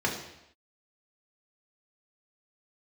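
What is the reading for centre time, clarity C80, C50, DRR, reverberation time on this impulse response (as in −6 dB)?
32 ms, 9.0 dB, 6.5 dB, −2.0 dB, non-exponential decay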